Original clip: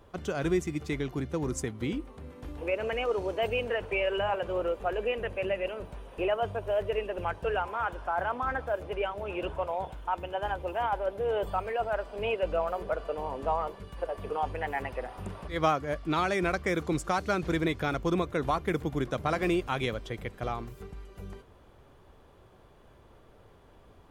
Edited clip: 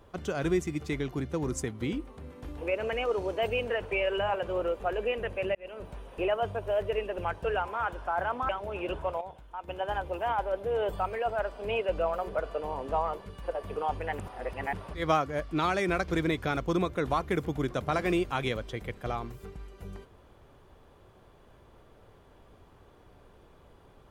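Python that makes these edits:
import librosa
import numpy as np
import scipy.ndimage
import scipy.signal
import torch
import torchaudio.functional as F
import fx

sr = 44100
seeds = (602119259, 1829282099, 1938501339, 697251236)

y = fx.edit(x, sr, fx.fade_in_span(start_s=5.55, length_s=0.34),
    fx.cut(start_s=8.49, length_s=0.54),
    fx.clip_gain(start_s=9.75, length_s=0.47, db=-9.0),
    fx.reverse_span(start_s=14.73, length_s=0.54),
    fx.cut(start_s=16.62, length_s=0.83), tone=tone)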